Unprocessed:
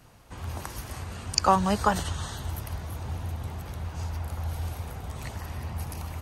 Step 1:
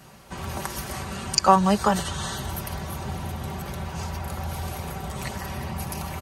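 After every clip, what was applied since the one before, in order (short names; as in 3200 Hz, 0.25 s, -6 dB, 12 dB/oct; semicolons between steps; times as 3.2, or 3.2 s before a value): HPF 70 Hz; comb 5.2 ms, depth 59%; in parallel at +1.5 dB: compressor, threshold -34 dBFS, peak gain reduction 21 dB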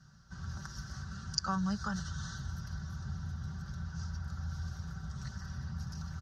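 EQ curve 160 Hz 0 dB, 290 Hz -16 dB, 470 Hz -22 dB, 1000 Hz -17 dB, 1500 Hz 0 dB, 2300 Hz -27 dB, 3600 Hz -11 dB, 5700 Hz -1 dB, 8900 Hz -27 dB, 14000 Hz -29 dB; gain -6 dB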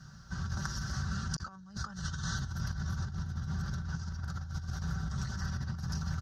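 negative-ratio compressor -41 dBFS, ratio -0.5; gain +5.5 dB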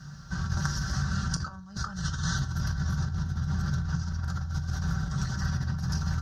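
shoebox room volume 150 m³, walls furnished, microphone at 0.55 m; gain +5 dB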